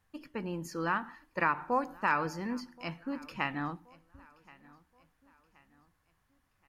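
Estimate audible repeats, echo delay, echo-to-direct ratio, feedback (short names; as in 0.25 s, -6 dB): 2, 1.076 s, -22.5 dB, 42%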